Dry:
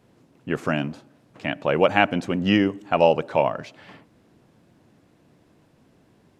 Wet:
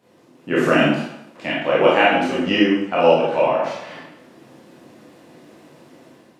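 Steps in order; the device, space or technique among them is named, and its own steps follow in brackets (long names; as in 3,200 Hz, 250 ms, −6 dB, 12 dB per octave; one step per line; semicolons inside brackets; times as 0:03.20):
far laptop microphone (convolution reverb RT60 0.80 s, pre-delay 20 ms, DRR −7.5 dB; high-pass filter 190 Hz 12 dB per octave; automatic gain control gain up to 7 dB)
level −1 dB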